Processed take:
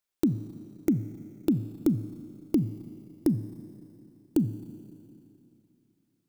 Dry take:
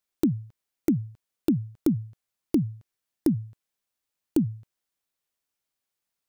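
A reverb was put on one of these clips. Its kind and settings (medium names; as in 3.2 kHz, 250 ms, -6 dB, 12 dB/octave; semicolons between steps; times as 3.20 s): Schroeder reverb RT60 2.9 s, combs from 29 ms, DRR 12.5 dB; trim -1.5 dB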